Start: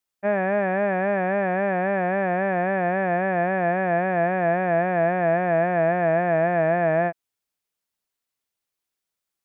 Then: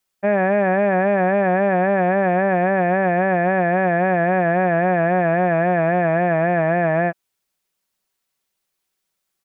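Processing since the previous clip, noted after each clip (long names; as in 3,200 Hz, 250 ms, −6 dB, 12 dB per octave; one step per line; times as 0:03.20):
comb filter 5.3 ms, depth 32%
brickwall limiter −16 dBFS, peak gain reduction 4.5 dB
level +7 dB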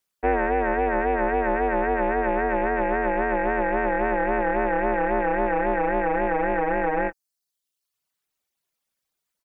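ring modulation 150 Hz
reverb reduction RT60 0.79 s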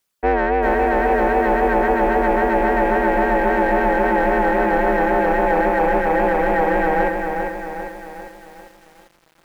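in parallel at −4 dB: soft clipping −21 dBFS, distortion −11 dB
on the sum: feedback echo at a low word length 398 ms, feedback 55%, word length 8 bits, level −5 dB
level +1.5 dB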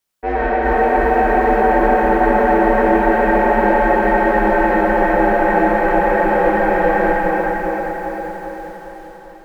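dense smooth reverb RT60 4.6 s, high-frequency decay 0.5×, DRR −7 dB
level −5.5 dB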